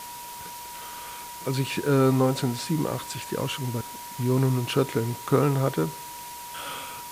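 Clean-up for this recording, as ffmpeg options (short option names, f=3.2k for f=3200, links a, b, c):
-af "adeclick=t=4,bandreject=f=960:w=30,afwtdn=0.0089"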